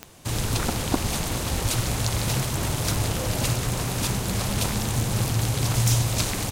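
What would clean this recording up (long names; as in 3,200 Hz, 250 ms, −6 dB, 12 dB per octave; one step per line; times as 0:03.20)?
click removal
echo removal 369 ms −15.5 dB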